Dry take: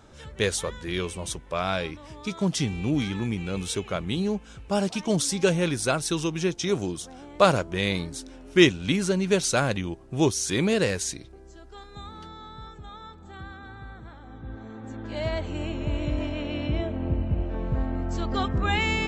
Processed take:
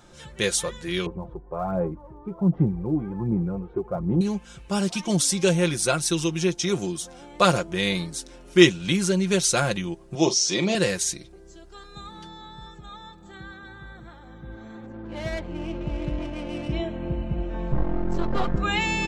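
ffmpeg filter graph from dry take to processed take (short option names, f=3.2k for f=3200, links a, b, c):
-filter_complex "[0:a]asettb=1/sr,asplit=3[a][b][c];[a]atrim=end=1.064[d];[b]atrim=start=1.06:end=4.21,asetpts=PTS-STARTPTS,afade=t=in:d=0.004:c=qsin,afade=t=out:st=3.146:d=0.004:c=qsin,lowpass=f=1k:w=0.5412,lowpass=f=1k:w=1.3066,aphaser=in_gain=1:out_gain=1:delay=2.8:decay=0.5:speed=1.3:type=sinusoidal[e];[c]atrim=start=4.206[f];[d][e]acrossfade=d=0.004:c1=hsin:c2=qsin[g];[g][f]acrossfade=d=0.004:c1=qsin:c2=hsin,asettb=1/sr,asplit=3[h][i][j];[h]atrim=end=10.154[k];[i]atrim=start=10.15:end=10.75,asetpts=PTS-STARTPTS,afade=t=in:d=0.004:c=qsin,afade=t=out:st=0.596:d=0.004:c=qsin,highpass=190,equalizer=f=640:t=q:w=4:g=7,equalizer=f=1.6k:t=q:w=4:g=-9,equalizer=f=5.3k:t=q:w=4:g=8,lowpass=f=6.6k:w=0.5412,lowpass=f=6.6k:w=1.3066,asplit=2[l][m];[m]adelay=42,volume=-12dB[n];[l][n]amix=inputs=2:normalize=0,atrim=end_sample=26460[o];[j]atrim=start=10.746[p];[k][o]acrossfade=d=0.004:c1=hsin:c2=qsin[q];[q][p]acrossfade=d=0.004:c1=qsin:c2=hsin,asettb=1/sr,asplit=3[r][s][t];[r]atrim=end=14.864[u];[s]atrim=start=14.86:end=16.73,asetpts=PTS-STARTPTS,afade=t=in:d=0.004:c=qsin,afade=t=out:st=1.866:d=0.004:c=qsin,highshelf=f=4.5k:g=5,adynamicsmooth=sensitivity=3:basefreq=1.1k[v];[t]atrim=start=16.726[w];[u][v]acrossfade=d=0.004:c1=hsin:c2=qsin[x];[x][w]acrossfade=d=0.004:c1=qsin:c2=hsin,asettb=1/sr,asplit=3[y][z][aa];[y]atrim=end=17.724[ab];[z]atrim=start=17.72:end=18.56,asetpts=PTS-STARTPTS,afade=t=in:d=0.004:c=qsin,afade=t=out:st=0.836:d=0.004:c=qsin,aeval=exprs='max(val(0),0)':c=same,lowpass=f=1k:p=1,acontrast=87[ac];[aa]atrim=start=18.556[ad];[ab][ac]acrossfade=d=0.004:c1=hsin:c2=qsin[ae];[ae][ad]acrossfade=d=0.004:c1=qsin:c2=hsin,highshelf=f=4.1k:g=6,aecho=1:1:5.7:0.59,volume=-1dB"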